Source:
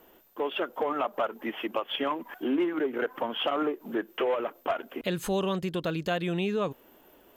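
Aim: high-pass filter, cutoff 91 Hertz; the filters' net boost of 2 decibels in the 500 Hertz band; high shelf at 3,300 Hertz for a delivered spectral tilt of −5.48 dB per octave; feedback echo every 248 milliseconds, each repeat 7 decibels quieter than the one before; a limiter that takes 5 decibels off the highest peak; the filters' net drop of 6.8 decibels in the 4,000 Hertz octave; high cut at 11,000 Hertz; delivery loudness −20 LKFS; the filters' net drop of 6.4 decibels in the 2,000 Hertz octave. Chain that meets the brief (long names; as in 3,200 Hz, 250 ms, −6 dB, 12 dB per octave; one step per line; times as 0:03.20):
high-pass filter 91 Hz
low-pass filter 11,000 Hz
parametric band 500 Hz +3 dB
parametric band 2,000 Hz −7 dB
high-shelf EQ 3,300 Hz −4.5 dB
parametric band 4,000 Hz −3 dB
brickwall limiter −21 dBFS
repeating echo 248 ms, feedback 45%, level −7 dB
level +10.5 dB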